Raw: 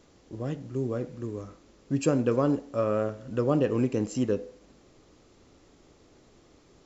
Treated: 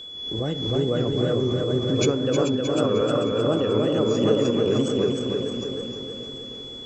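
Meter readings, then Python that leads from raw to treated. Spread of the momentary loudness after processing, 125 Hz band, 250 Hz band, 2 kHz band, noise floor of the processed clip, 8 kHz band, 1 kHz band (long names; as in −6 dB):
11 LU, +6.5 dB, +6.0 dB, +7.0 dB, −37 dBFS, can't be measured, +5.0 dB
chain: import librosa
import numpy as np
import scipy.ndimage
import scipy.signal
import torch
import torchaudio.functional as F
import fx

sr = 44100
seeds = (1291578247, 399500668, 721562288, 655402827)

p1 = fx.reverse_delay_fb(x, sr, ms=376, feedback_pct=51, wet_db=-1.0)
p2 = fx.rider(p1, sr, range_db=4, speed_s=0.5)
p3 = fx.small_body(p2, sr, hz=(440.0, 1400.0, 3500.0), ring_ms=45, db=6)
p4 = fx.wow_flutter(p3, sr, seeds[0], rate_hz=2.1, depth_cents=130.0)
p5 = p4 + fx.echo_feedback(p4, sr, ms=310, feedback_pct=54, wet_db=-4, dry=0)
p6 = p5 + 10.0 ** (-36.0 / 20.0) * np.sin(2.0 * np.pi * 3400.0 * np.arange(len(p5)) / sr)
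y = fx.pre_swell(p6, sr, db_per_s=46.0)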